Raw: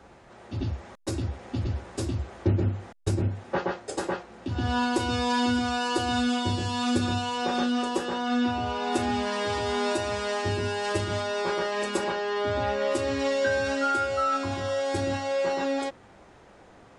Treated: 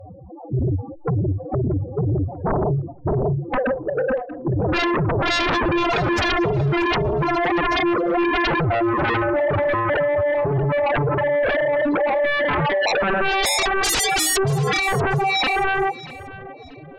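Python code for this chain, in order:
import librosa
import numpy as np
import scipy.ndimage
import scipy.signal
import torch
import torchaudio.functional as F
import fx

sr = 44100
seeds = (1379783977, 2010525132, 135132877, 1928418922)

p1 = fx.spec_topn(x, sr, count=4)
p2 = fx.pitch_keep_formants(p1, sr, semitones=6.0)
p3 = fx.fold_sine(p2, sr, drive_db=17, ceiling_db=-17.0)
y = p3 + fx.echo_feedback(p3, sr, ms=635, feedback_pct=30, wet_db=-18.0, dry=0)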